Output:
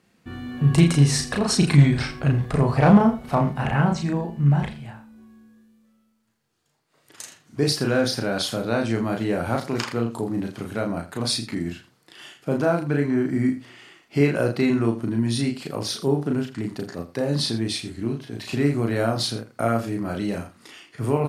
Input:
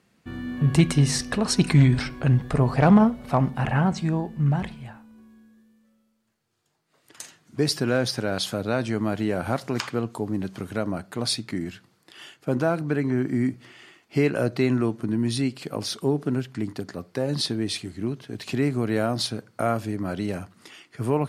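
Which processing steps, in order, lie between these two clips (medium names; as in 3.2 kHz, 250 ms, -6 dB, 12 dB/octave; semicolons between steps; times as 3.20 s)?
doubling 35 ms -3 dB; on a send: delay 82 ms -15 dB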